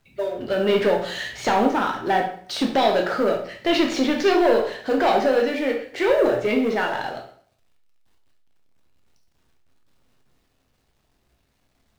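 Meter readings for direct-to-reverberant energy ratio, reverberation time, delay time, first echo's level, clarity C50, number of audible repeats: 1.0 dB, 0.50 s, no echo audible, no echo audible, 7.5 dB, no echo audible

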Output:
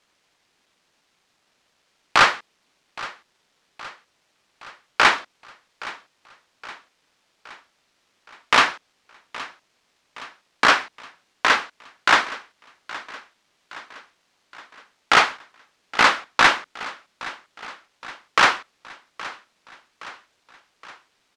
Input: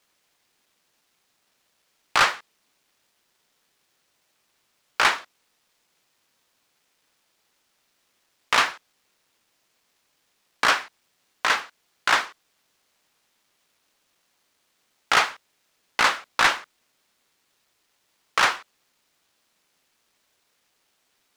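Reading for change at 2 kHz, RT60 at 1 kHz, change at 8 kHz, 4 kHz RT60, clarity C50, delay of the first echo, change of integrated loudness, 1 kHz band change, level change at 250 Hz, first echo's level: +4.0 dB, no reverb audible, +0.5 dB, no reverb audible, no reverb audible, 819 ms, +3.5 dB, +4.5 dB, +8.0 dB, −18.0 dB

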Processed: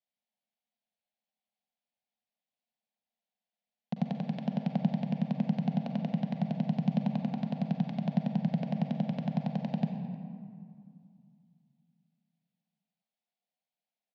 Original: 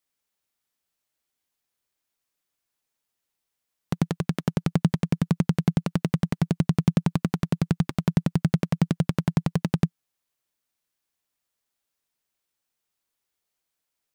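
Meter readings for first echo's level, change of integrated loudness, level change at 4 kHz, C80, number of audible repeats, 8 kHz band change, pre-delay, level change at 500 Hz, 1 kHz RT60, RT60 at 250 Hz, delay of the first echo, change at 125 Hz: −20.5 dB, −7.0 dB, −10.0 dB, 6.5 dB, 1, below −25 dB, 40 ms, −7.0 dB, 2.4 s, 3.1 s, 310 ms, −9.0 dB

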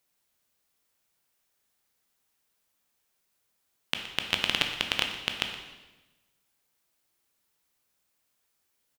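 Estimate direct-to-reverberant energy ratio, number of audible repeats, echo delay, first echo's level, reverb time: 3.5 dB, 1, 120 ms, −15.0 dB, 1.1 s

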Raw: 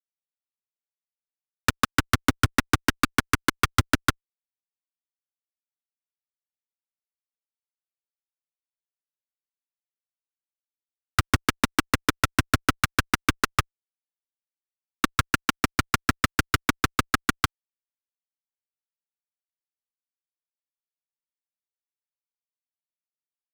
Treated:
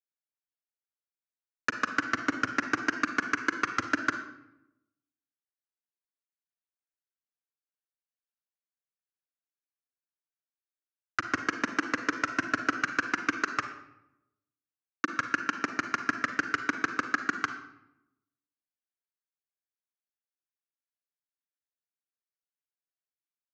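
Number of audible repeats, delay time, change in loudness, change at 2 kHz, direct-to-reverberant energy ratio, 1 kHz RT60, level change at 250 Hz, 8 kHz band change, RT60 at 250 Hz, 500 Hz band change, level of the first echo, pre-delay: no echo audible, no echo audible, −5.5 dB, −2.0 dB, 7.5 dB, 0.80 s, −6.5 dB, −12.5 dB, 1.1 s, −6.0 dB, no echo audible, 37 ms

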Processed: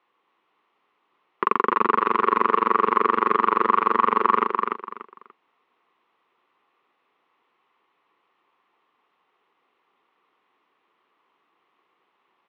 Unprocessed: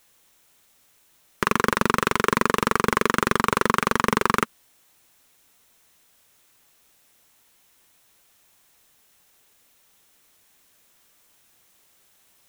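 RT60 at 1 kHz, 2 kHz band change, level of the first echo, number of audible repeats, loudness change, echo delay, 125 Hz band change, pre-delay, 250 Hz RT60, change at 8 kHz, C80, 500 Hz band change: no reverb audible, −5.5 dB, −4.0 dB, 3, +1.0 dB, 291 ms, below −10 dB, no reverb audible, no reverb audible, below −35 dB, no reverb audible, 0.0 dB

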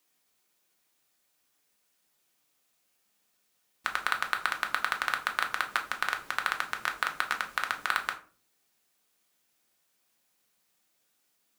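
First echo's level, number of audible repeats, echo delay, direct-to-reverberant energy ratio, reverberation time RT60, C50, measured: no echo audible, no echo audible, no echo audible, 3.5 dB, 0.40 s, 12.5 dB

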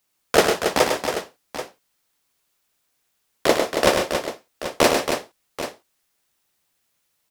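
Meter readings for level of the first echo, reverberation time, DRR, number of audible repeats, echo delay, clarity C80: −6.0 dB, no reverb audible, no reverb audible, 4, 102 ms, no reverb audible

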